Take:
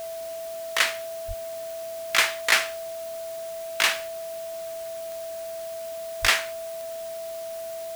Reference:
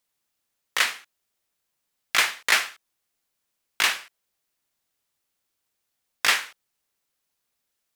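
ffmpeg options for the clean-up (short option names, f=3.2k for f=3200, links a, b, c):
-filter_complex "[0:a]adeclick=t=4,bandreject=f=660:w=30,asplit=3[a][b][c];[a]afade=t=out:st=1.27:d=0.02[d];[b]highpass=f=140:w=0.5412,highpass=f=140:w=1.3066,afade=t=in:st=1.27:d=0.02,afade=t=out:st=1.39:d=0.02[e];[c]afade=t=in:st=1.39:d=0.02[f];[d][e][f]amix=inputs=3:normalize=0,asplit=3[g][h][i];[g]afade=t=out:st=6.21:d=0.02[j];[h]highpass=f=140:w=0.5412,highpass=f=140:w=1.3066,afade=t=in:st=6.21:d=0.02,afade=t=out:st=6.33:d=0.02[k];[i]afade=t=in:st=6.33:d=0.02[l];[j][k][l]amix=inputs=3:normalize=0,afwtdn=0.0056"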